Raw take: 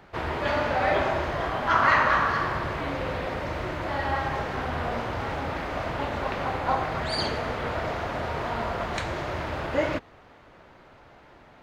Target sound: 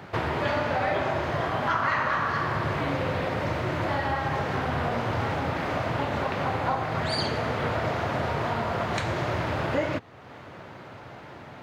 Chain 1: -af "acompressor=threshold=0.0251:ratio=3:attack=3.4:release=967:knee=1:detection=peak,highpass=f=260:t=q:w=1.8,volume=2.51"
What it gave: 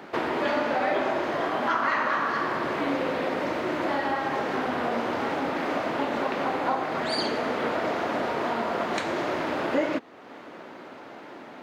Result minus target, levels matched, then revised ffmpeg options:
125 Hz band -14.0 dB
-af "acompressor=threshold=0.0251:ratio=3:attack=3.4:release=967:knee=1:detection=peak,highpass=f=110:t=q:w=1.8,volume=2.51"

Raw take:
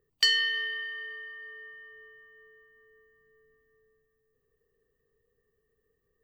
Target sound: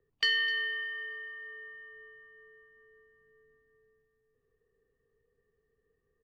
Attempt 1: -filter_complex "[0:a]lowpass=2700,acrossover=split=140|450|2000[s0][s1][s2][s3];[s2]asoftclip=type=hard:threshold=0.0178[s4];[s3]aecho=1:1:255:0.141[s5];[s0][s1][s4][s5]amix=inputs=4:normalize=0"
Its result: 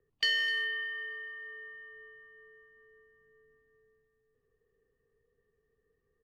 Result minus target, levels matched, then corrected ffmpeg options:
hard clipper: distortion +28 dB
-filter_complex "[0:a]lowpass=2700,acrossover=split=140|450|2000[s0][s1][s2][s3];[s2]asoftclip=type=hard:threshold=0.0501[s4];[s3]aecho=1:1:255:0.141[s5];[s0][s1][s4][s5]amix=inputs=4:normalize=0"

